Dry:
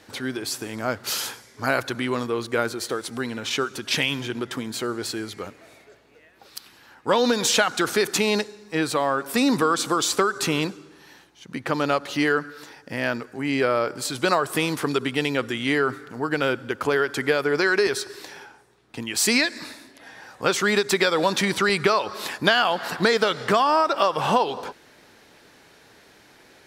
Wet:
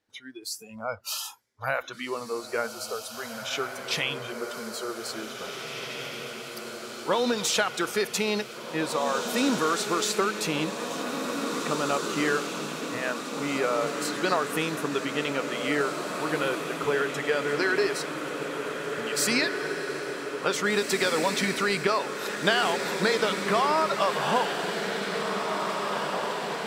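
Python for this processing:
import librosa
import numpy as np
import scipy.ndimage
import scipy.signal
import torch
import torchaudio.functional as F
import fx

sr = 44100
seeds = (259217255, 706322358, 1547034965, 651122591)

y = fx.noise_reduce_blind(x, sr, reduce_db=23)
y = fx.echo_diffused(y, sr, ms=1990, feedback_pct=68, wet_db=-5)
y = y * 10.0 ** (-5.0 / 20.0)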